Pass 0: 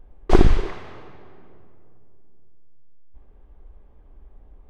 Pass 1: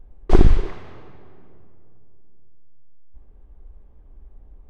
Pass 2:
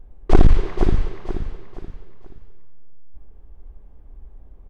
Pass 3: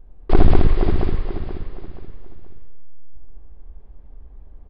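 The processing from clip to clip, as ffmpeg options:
ffmpeg -i in.wav -af "lowshelf=frequency=300:gain=6.5,volume=-4dB" out.wav
ffmpeg -i in.wav -af "aecho=1:1:478|956|1434|1912:0.447|0.161|0.0579|0.0208,volume=7dB,asoftclip=hard,volume=-7dB,volume=2dB" out.wav
ffmpeg -i in.wav -filter_complex "[0:a]aresample=11025,aresample=44100,asplit=2[link_01][link_02];[link_02]aecho=0:1:69.97|201.2:0.631|0.794[link_03];[link_01][link_03]amix=inputs=2:normalize=0,volume=-2dB" out.wav

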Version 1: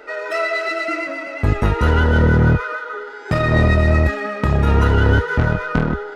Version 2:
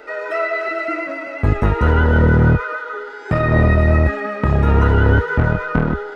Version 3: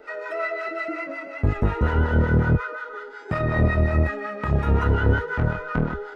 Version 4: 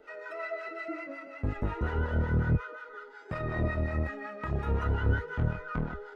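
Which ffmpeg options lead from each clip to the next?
ffmpeg -i in.wav -filter_complex "[0:a]acrossover=split=2500[link_01][link_02];[link_02]acompressor=threshold=-46dB:ratio=4:attack=1:release=60[link_03];[link_01][link_03]amix=inputs=2:normalize=0,volume=1dB" out.wav
ffmpeg -i in.wav -filter_complex "[0:a]acrossover=split=700[link_01][link_02];[link_01]aeval=exprs='val(0)*(1-0.7/2+0.7/2*cos(2*PI*5.5*n/s))':channel_layout=same[link_03];[link_02]aeval=exprs='val(0)*(1-0.7/2-0.7/2*cos(2*PI*5.5*n/s))':channel_layout=same[link_04];[link_03][link_04]amix=inputs=2:normalize=0,volume=-3.5dB" out.wav
ffmpeg -i in.wav -af "flanger=delay=0.3:depth=3.5:regen=63:speed=0.37:shape=sinusoidal,volume=-5dB" out.wav

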